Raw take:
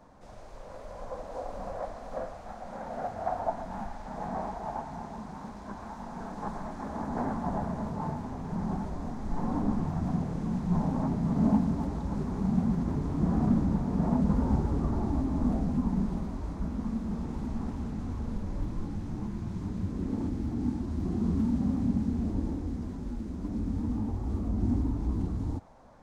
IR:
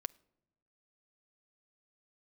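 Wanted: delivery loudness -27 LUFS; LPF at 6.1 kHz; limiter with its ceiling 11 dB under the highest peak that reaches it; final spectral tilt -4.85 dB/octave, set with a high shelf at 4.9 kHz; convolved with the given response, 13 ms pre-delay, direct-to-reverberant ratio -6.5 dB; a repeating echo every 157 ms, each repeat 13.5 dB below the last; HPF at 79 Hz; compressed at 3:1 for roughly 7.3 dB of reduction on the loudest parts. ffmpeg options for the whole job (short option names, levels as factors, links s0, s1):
-filter_complex "[0:a]highpass=79,lowpass=6100,highshelf=f=4900:g=-5.5,acompressor=threshold=0.0316:ratio=3,alimiter=level_in=2.24:limit=0.0631:level=0:latency=1,volume=0.447,aecho=1:1:157|314:0.211|0.0444,asplit=2[s0][s1];[1:a]atrim=start_sample=2205,adelay=13[s2];[s1][s2]afir=irnorm=-1:irlink=0,volume=2.66[s3];[s0][s3]amix=inputs=2:normalize=0,volume=1.78"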